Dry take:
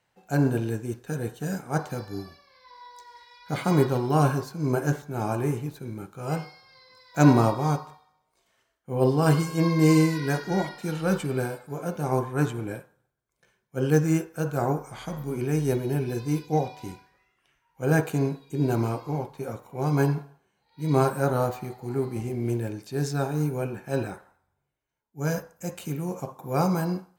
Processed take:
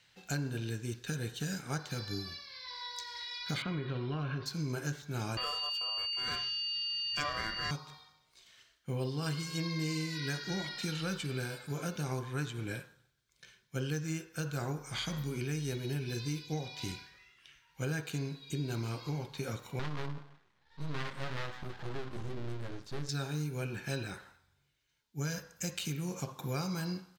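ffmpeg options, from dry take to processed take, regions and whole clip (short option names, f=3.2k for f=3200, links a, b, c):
-filter_complex "[0:a]asettb=1/sr,asplit=3[a][b][c];[a]atrim=end=3.624[d];[b]atrim=start=3.62:end=4.46,asetpts=PTS-STARTPTS,afade=t=in:d=0.004:c=qsin,afade=t=out:st=0.836:d=0.004:c=qsin,lowpass=f=3.2k:w=0.5412,lowpass=f=3.2k:w=1.3066,acompressor=threshold=-23dB:ratio=3:attack=3.2:release=140:knee=1:detection=peak,bandreject=f=840:w=8.5[e];[c]atrim=start=4.456[f];[d][e]acrossfade=d=0.004:c1=hsin:c2=qsin[g];[g][f]acrossfade=d=0.004:c1=qsin:c2=hsin,asettb=1/sr,asplit=3[h][i][j];[h]atrim=end=5.374[k];[i]atrim=start=5.37:end=7.71,asetpts=PTS-STARTPTS,afade=t=in:d=0.004:c=qsin,afade=t=out:st=2.336:d=0.004:c=qsin,aeval=exprs='val(0)+0.02*sin(2*PI*3700*n/s)':c=same,aeval=exprs='val(0)*sin(2*PI*880*n/s)':c=same[l];[j]atrim=start=7.706[m];[k][l]acrossfade=d=0.004:c1=hsin:c2=qsin[n];[n][m]acrossfade=d=0.004:c1=qsin:c2=hsin,asettb=1/sr,asplit=3[o][p][q];[o]atrim=end=19.794[r];[p]atrim=start=19.79:end=23.09,asetpts=PTS-STARTPTS,afade=t=in:d=0.004:c=qsin,afade=t=out:st=3.296:d=0.004:c=qsin,lowpass=12k,highshelf=f=1.6k:t=q:w=3:g=-13,aeval=exprs='max(val(0),0)':c=same[s];[q]atrim=start=23.086[t];[r][s]acrossfade=d=0.004:c1=hsin:c2=qsin[u];[u][t]acrossfade=d=0.004:c1=qsin:c2=hsin,firequalizer=gain_entry='entry(140,0);entry(200,-3);entry(740,-9);entry(1500,2);entry(3800,12);entry(9700,-1)':delay=0.05:min_phase=1,acompressor=threshold=-38dB:ratio=6,volume=4dB"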